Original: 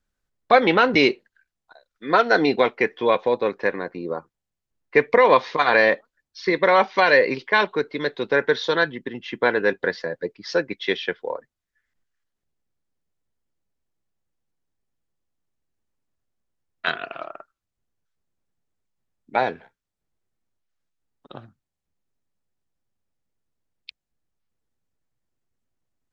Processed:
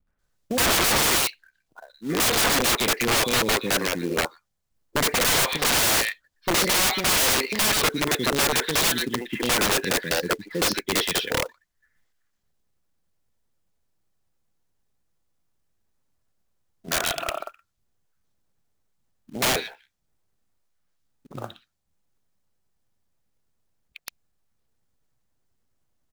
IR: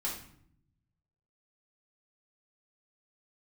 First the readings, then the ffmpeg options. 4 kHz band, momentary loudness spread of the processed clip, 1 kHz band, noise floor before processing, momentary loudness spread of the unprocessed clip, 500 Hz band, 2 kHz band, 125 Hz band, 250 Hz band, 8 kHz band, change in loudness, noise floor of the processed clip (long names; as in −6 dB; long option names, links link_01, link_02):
+8.0 dB, 11 LU, −5.0 dB, −84 dBFS, 15 LU, −8.0 dB, −3.0 dB, +4.5 dB, −2.0 dB, can't be measured, −1.0 dB, −75 dBFS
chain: -filter_complex "[0:a]acrossover=split=320|2500[link_01][link_02][link_03];[link_02]adelay=70[link_04];[link_03]adelay=190[link_05];[link_01][link_04][link_05]amix=inputs=3:normalize=0,acrusher=bits=4:mode=log:mix=0:aa=0.000001,aeval=exprs='(mod(11.9*val(0)+1,2)-1)/11.9':channel_layout=same,volume=6dB"